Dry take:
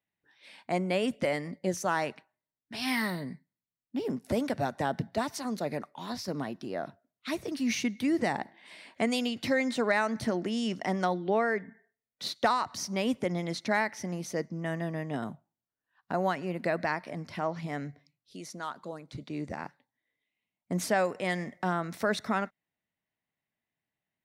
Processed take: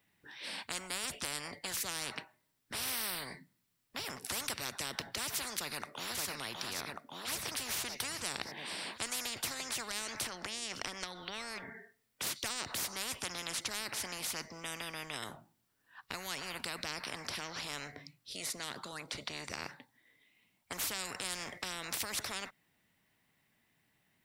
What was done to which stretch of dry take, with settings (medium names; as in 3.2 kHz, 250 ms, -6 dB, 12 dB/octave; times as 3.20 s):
5.56–6.23 s: echo throw 570 ms, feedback 55%, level -8 dB
10.15–11.23 s: compression, threshold -34 dBFS
whole clip: peaking EQ 620 Hz -4.5 dB; band-stop 6.5 kHz, Q 17; spectrum-flattening compressor 10:1